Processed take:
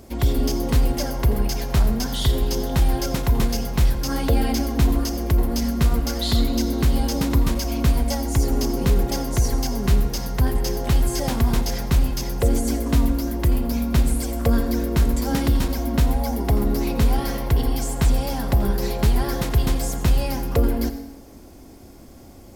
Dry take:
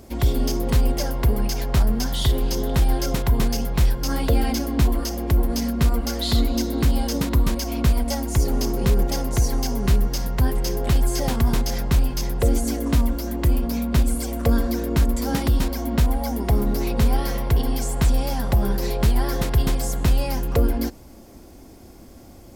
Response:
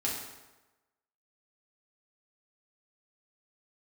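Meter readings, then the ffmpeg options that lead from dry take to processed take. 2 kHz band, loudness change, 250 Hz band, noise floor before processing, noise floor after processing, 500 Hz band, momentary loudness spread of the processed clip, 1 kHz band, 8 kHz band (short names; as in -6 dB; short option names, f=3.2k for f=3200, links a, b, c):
+0.5 dB, +0.5 dB, +1.0 dB, -44 dBFS, -43 dBFS, +0.5 dB, 3 LU, +0.5 dB, +0.5 dB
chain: -filter_complex "[0:a]asplit=2[a][b];[1:a]atrim=start_sample=2205,adelay=83[c];[b][c]afir=irnorm=-1:irlink=0,volume=-16dB[d];[a][d]amix=inputs=2:normalize=0"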